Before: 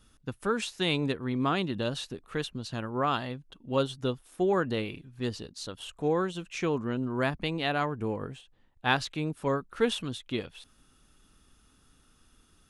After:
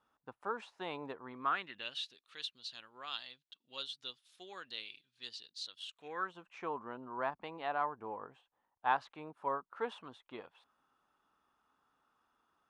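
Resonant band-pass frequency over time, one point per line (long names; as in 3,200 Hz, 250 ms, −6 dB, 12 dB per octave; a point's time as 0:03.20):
resonant band-pass, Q 2.5
0:01.24 890 Hz
0:02.10 3,900 Hz
0:05.92 3,900 Hz
0:06.34 940 Hz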